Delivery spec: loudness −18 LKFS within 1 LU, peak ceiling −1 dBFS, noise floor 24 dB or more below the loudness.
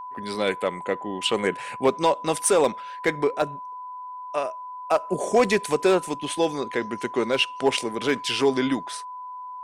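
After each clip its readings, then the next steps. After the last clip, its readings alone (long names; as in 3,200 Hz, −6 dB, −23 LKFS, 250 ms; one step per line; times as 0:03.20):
share of clipped samples 0.3%; peaks flattened at −11.5 dBFS; interfering tone 1,000 Hz; level of the tone −34 dBFS; integrated loudness −24.5 LKFS; sample peak −11.5 dBFS; target loudness −18.0 LKFS
→ clipped peaks rebuilt −11.5 dBFS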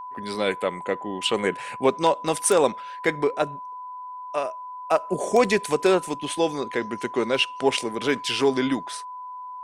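share of clipped samples 0.0%; interfering tone 1,000 Hz; level of the tone −34 dBFS
→ notch filter 1,000 Hz, Q 30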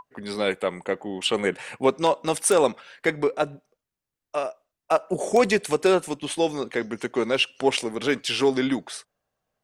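interfering tone none found; integrated loudness −24.5 LKFS; sample peak −3.0 dBFS; target loudness −18.0 LKFS
→ level +6.5 dB
brickwall limiter −1 dBFS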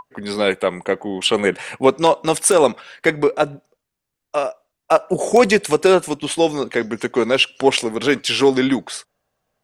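integrated loudness −18.0 LKFS; sample peak −1.0 dBFS; background noise floor −81 dBFS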